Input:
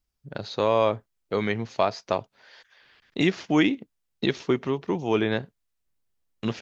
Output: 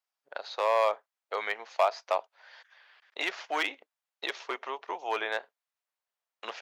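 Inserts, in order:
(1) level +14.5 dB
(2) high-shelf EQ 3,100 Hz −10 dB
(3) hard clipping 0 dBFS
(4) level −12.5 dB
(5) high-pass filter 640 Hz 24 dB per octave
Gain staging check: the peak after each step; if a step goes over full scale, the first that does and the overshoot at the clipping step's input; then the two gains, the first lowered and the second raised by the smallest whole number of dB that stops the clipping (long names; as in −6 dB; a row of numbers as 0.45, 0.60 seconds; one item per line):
+6.0, +4.5, 0.0, −12.5, −13.0 dBFS
step 1, 4.5 dB
step 1 +9.5 dB, step 4 −7.5 dB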